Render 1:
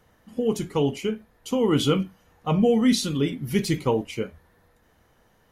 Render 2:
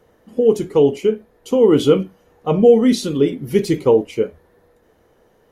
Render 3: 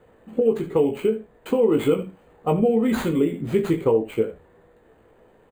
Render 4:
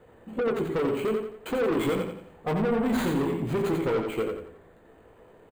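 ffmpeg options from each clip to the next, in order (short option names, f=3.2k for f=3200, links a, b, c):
-af "equalizer=f=430:t=o:w=1.3:g=12"
-filter_complex "[0:a]aecho=1:1:18|76:0.501|0.188,acrossover=split=2600[a][b];[b]acrusher=samples=8:mix=1:aa=0.000001[c];[a][c]amix=inputs=2:normalize=0,acompressor=threshold=-19dB:ratio=2.5"
-filter_complex "[0:a]asoftclip=type=tanh:threshold=-23.5dB,asplit=2[a][b];[b]aecho=0:1:88|176|264|352|440:0.562|0.214|0.0812|0.0309|0.0117[c];[a][c]amix=inputs=2:normalize=0"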